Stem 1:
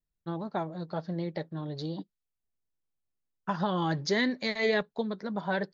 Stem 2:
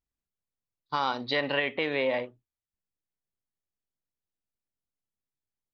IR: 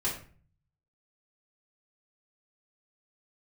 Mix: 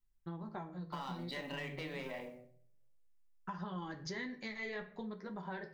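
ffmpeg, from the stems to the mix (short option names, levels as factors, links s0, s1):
-filter_complex "[0:a]equalizer=f=100:t=o:w=0.67:g=-11,equalizer=f=250:t=o:w=0.67:g=-6,equalizer=f=630:t=o:w=0.67:g=-7,equalizer=f=4000:t=o:w=0.67:g=-7,flanger=delay=9.5:depth=3.9:regen=-40:speed=0.79:shape=sinusoidal,lowshelf=f=110:g=9.5,volume=1.06,asplit=2[s0][s1];[s1]volume=0.251[s2];[1:a]bandreject=f=46.93:t=h:w=4,bandreject=f=93.86:t=h:w=4,bandreject=f=140.79:t=h:w=4,bandreject=f=187.72:t=h:w=4,bandreject=f=234.65:t=h:w=4,bandreject=f=281.58:t=h:w=4,bandreject=f=328.51:t=h:w=4,bandreject=f=375.44:t=h:w=4,bandreject=f=422.37:t=h:w=4,bandreject=f=469.3:t=h:w=4,bandreject=f=516.23:t=h:w=4,bandreject=f=563.16:t=h:w=4,bandreject=f=610.09:t=h:w=4,bandreject=f=657.02:t=h:w=4,bandreject=f=703.95:t=h:w=4,bandreject=f=750.88:t=h:w=4,acrusher=bits=6:mode=log:mix=0:aa=0.000001,aeval=exprs='(tanh(12.6*val(0)+0.15)-tanh(0.15))/12.6':c=same,volume=0.447,asplit=2[s3][s4];[s4]volume=0.447[s5];[2:a]atrim=start_sample=2205[s6];[s2][s5]amix=inputs=2:normalize=0[s7];[s7][s6]afir=irnorm=-1:irlink=0[s8];[s0][s3][s8]amix=inputs=3:normalize=0,acompressor=threshold=0.00708:ratio=3"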